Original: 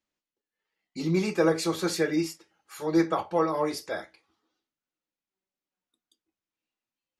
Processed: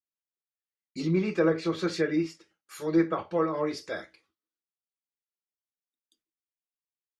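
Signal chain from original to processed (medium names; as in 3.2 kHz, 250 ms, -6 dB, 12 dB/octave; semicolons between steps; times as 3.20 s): gate with hold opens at -56 dBFS; low-pass that closes with the level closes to 2.4 kHz, closed at -21.5 dBFS; peaking EQ 820 Hz -9 dB 0.55 oct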